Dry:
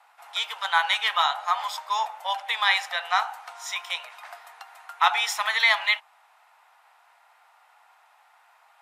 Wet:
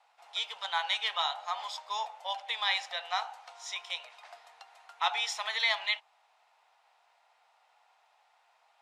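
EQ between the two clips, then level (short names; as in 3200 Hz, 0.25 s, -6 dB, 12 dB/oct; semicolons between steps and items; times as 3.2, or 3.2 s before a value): LPF 5000 Hz 12 dB/oct; bell 1400 Hz -14 dB 2.2 oct; +1.5 dB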